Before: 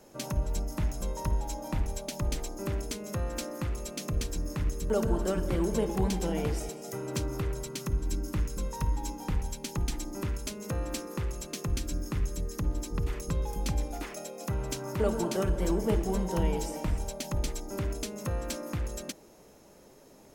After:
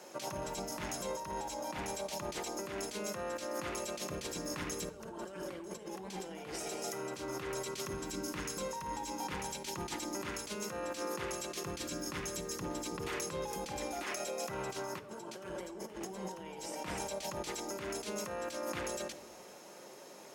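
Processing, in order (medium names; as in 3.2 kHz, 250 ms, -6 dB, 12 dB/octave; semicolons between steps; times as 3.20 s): frequency weighting A; compressor with a negative ratio -44 dBFS, ratio -1; simulated room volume 2500 m³, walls furnished, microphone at 0.95 m; trim +2.5 dB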